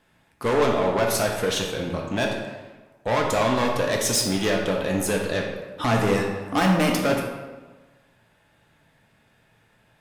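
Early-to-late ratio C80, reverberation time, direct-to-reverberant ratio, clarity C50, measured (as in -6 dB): 5.5 dB, 1.3 s, -0.5 dB, 3.0 dB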